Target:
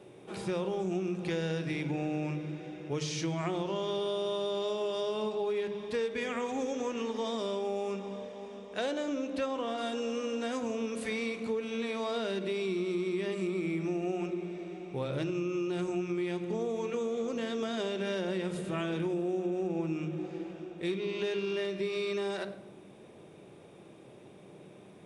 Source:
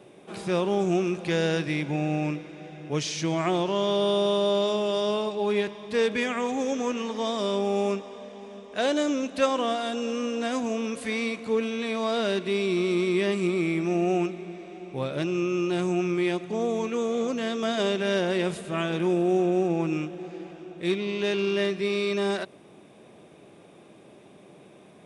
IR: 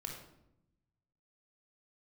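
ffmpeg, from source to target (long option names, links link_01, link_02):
-filter_complex "[0:a]asplit=2[link_01][link_02];[1:a]atrim=start_sample=2205,lowshelf=frequency=500:gain=7[link_03];[link_02][link_03]afir=irnorm=-1:irlink=0,volume=-5dB[link_04];[link_01][link_04]amix=inputs=2:normalize=0,acompressor=threshold=-24dB:ratio=5,asettb=1/sr,asplit=3[link_05][link_06][link_07];[link_05]atrim=end=8.914[link_08];[link_06]atrim=start=8.91:end=9.78,asetpts=PTS-STARTPTS,afade=type=in:duration=0.004:curve=qsin,afade=type=out:start_time=0.866:duration=0.004:curve=qsin,highshelf=frequency=6600:gain=-8.5[link_09];[link_07]atrim=start=9.776[link_10];[link_08][link_09]acrossfade=duration=0.004:curve1=hsin:curve2=qsin[link_11];[link_11][link_10]acrossfade=duration=0.004:curve1=qsin:curve2=hsin,volume=-6dB"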